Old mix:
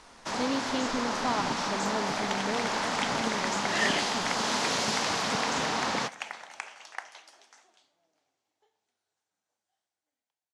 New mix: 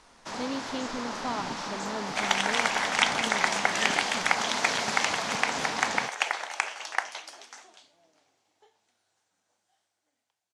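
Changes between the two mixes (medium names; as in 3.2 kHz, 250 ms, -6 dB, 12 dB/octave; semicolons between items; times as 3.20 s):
first sound -3.5 dB; second sound +12.0 dB; reverb: off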